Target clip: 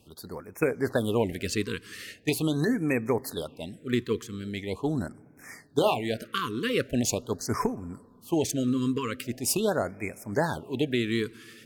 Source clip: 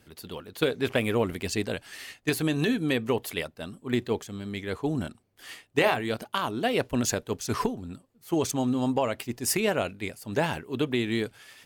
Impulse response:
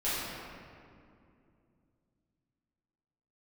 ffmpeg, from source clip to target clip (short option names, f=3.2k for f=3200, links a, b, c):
-filter_complex "[0:a]asplit=2[a][b];[b]lowpass=6k[c];[1:a]atrim=start_sample=2205[d];[c][d]afir=irnorm=-1:irlink=0,volume=-31.5dB[e];[a][e]amix=inputs=2:normalize=0,afftfilt=real='re*(1-between(b*sr/1024,680*pow(3700/680,0.5+0.5*sin(2*PI*0.42*pts/sr))/1.41,680*pow(3700/680,0.5+0.5*sin(2*PI*0.42*pts/sr))*1.41))':imag='im*(1-between(b*sr/1024,680*pow(3700/680,0.5+0.5*sin(2*PI*0.42*pts/sr))/1.41,680*pow(3700/680,0.5+0.5*sin(2*PI*0.42*pts/sr))*1.41))':win_size=1024:overlap=0.75"